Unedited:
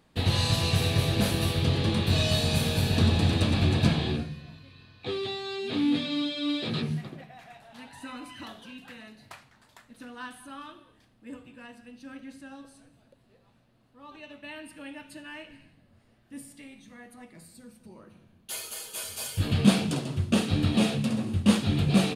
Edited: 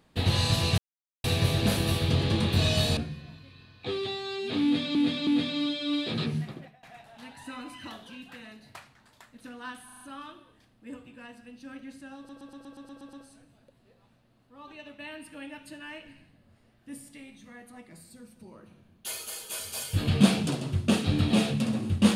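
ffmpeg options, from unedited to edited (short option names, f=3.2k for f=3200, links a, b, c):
-filter_complex "[0:a]asplit=18[a][b][c][d][e][f][g][h][i][j][k][l][m][n][o][p][q][r];[a]atrim=end=0.78,asetpts=PTS-STARTPTS,afade=t=out:st=0.776:d=0.004:c=hsin,apad=pad_dur=0.46[s];[b]atrim=start=0.78:end=2.512,asetpts=PTS-STARTPTS,afade=t=in:d=0.004:c=hsin[t];[c]atrim=start=4.168:end=6.152[u];[d]atrim=start=5.828:end=6.152[v];[e]atrim=start=5.828:end=7.39,asetpts=PTS-STARTPTS,afade=t=out:st=1.302:d=0.26:silence=0.0944061[w];[f]atrim=start=7.39:end=10.452,asetpts=PTS-STARTPTS,afade=t=in:d=0.004:c=hsin:silence=0.0944061[x];[g]atrim=start=10.408:end=10.452[y];[h]atrim=start=10.408:end=10.452[z];[i]atrim=start=10.408:end=10.452[aa];[j]atrim=start=10.408:end=12.692[ab];[k]atrim=start=12.568:end=12.692[ac];[l]atrim=start=12.568:end=12.692[ad];[m]atrim=start=12.568:end=12.692[ae];[n]atrim=start=12.568:end=12.692[af];[o]atrim=start=12.568:end=12.692[ag];[p]atrim=start=12.568:end=12.692[ah];[q]atrim=start=12.568:end=12.692[ai];[r]atrim=start=12.568[aj];[s][t]concat=n=2:v=0:a=1[ak];[ak][u]acrossfade=d=0.004:c1=hsin:c2=hsin[al];[al][v]acrossfade=d=0.004:c1=hsin:c2=hsin[am];[w][x]concat=n=2:v=0:a=1[an];[am][an]acrossfade=d=0.004:c1=hsin:c2=hsin[ao];[ao][y]acrossfade=d=0.004:c1=hsin:c2=hsin[ap];[ap][z]acrossfade=d=0.004:c1=hsin:c2=hsin[aq];[aq][aa]acrossfade=d=0.004:c1=hsin:c2=hsin[ar];[ar][ab]acrossfade=d=0.004:c1=hsin:c2=hsin[as];[as][ac]acrossfade=d=0.004:c1=hsin:c2=hsin[at];[at][ad]acrossfade=d=0.004:c1=hsin:c2=hsin[au];[au][ae]acrossfade=d=0.004:c1=hsin:c2=hsin[av];[av][af]acrossfade=d=0.004:c1=hsin:c2=hsin[aw];[aw][ag]acrossfade=d=0.004:c1=hsin:c2=hsin[ax];[ax][ah]acrossfade=d=0.004:c1=hsin:c2=hsin[ay];[ay][ai]acrossfade=d=0.004:c1=hsin:c2=hsin[az];[az][aj]acrossfade=d=0.004:c1=hsin:c2=hsin"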